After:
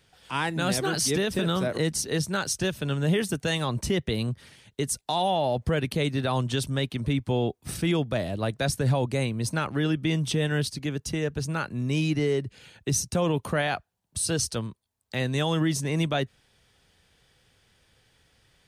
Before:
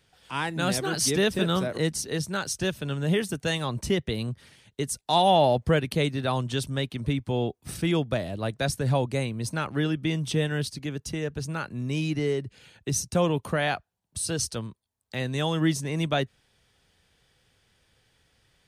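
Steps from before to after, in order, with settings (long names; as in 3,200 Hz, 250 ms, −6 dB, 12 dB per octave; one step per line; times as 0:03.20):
brickwall limiter −18.5 dBFS, peak gain reduction 8.5 dB
level +2.5 dB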